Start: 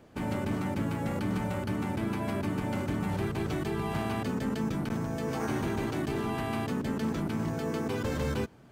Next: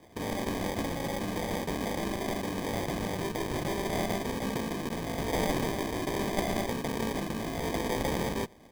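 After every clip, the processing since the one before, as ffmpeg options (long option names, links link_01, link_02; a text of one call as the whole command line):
ffmpeg -i in.wav -af "aemphasis=mode=production:type=riaa,acrusher=samples=32:mix=1:aa=0.000001,volume=3dB" out.wav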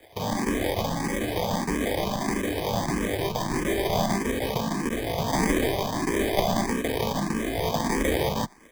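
ffmpeg -i in.wav -filter_complex "[0:a]acrossover=split=540|6400[link_01][link_02][link_03];[link_01]aeval=exprs='sgn(val(0))*max(abs(val(0))-0.00112,0)':channel_layout=same[link_04];[link_04][link_02][link_03]amix=inputs=3:normalize=0,asplit=2[link_05][link_06];[link_06]afreqshift=1.6[link_07];[link_05][link_07]amix=inputs=2:normalize=1,volume=9dB" out.wav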